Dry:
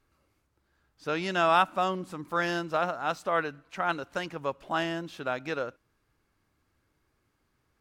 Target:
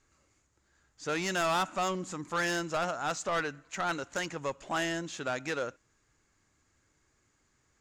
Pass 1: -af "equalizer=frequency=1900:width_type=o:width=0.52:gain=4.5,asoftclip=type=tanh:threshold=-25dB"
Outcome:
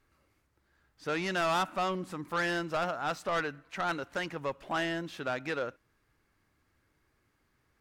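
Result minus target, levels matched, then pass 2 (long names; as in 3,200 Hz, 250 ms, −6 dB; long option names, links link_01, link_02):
8,000 Hz band −9.0 dB
-af "lowpass=frequency=7000:width_type=q:width=7.4,equalizer=frequency=1900:width_type=o:width=0.52:gain=4.5,asoftclip=type=tanh:threshold=-25dB"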